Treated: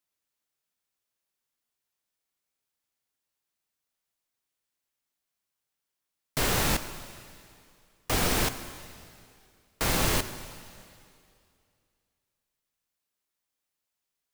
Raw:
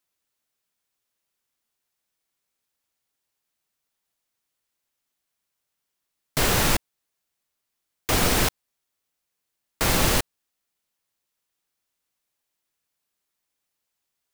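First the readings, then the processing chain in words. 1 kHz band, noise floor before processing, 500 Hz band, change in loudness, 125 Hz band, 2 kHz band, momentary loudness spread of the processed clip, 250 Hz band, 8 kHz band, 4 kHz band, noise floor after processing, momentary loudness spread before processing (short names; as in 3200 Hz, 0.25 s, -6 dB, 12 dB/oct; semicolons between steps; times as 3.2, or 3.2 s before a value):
-4.5 dB, -81 dBFS, -4.5 dB, -5.0 dB, -4.5 dB, -4.5 dB, 20 LU, -4.5 dB, -4.5 dB, -4.5 dB, under -85 dBFS, 10 LU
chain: plate-style reverb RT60 2.4 s, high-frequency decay 1×, pre-delay 0 ms, DRR 10.5 dB; crackling interface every 0.68 s, samples 1024, repeat, from 0.57; gain -5 dB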